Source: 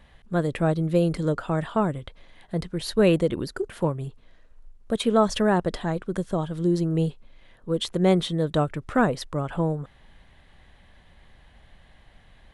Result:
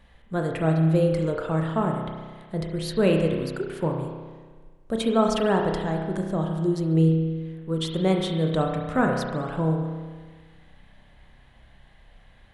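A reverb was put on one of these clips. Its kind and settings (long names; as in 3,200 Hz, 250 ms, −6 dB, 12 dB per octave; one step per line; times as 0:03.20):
spring reverb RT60 1.5 s, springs 31 ms, chirp 45 ms, DRR 1.5 dB
level −2.5 dB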